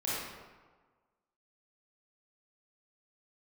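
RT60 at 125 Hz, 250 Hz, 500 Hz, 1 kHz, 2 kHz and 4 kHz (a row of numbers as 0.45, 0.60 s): 1.3, 1.4, 1.4, 1.4, 1.1, 0.85 s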